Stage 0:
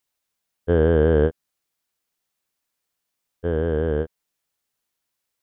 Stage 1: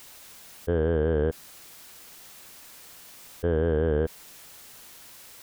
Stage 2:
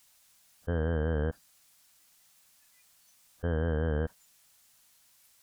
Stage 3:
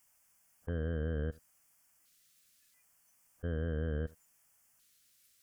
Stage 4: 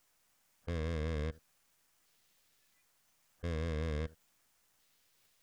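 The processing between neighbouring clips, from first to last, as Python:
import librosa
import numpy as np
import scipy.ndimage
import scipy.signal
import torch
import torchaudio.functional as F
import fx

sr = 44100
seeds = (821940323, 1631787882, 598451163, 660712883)

y1 = fx.env_flatten(x, sr, amount_pct=100)
y1 = y1 * 10.0 ** (-8.0 / 20.0)
y2 = fx.peak_eq(y1, sr, hz=8500.0, db=5.5, octaves=2.1)
y2 = fx.noise_reduce_blind(y2, sr, reduce_db=17)
y2 = fx.peak_eq(y2, sr, hz=390.0, db=-11.5, octaves=0.64)
y2 = y2 * 10.0 ** (-2.0 / 20.0)
y3 = fx.filter_lfo_notch(y2, sr, shape='square', hz=0.73, low_hz=880.0, high_hz=3900.0, q=1.0)
y3 = y3 + 10.0 ** (-22.5 / 20.0) * np.pad(y3, (int(78 * sr / 1000.0), 0))[:len(y3)]
y3 = y3 * 10.0 ** (-5.0 / 20.0)
y4 = fx.tracing_dist(y3, sr, depth_ms=0.38)
y4 = y4 * 10.0 ** (-1.0 / 20.0)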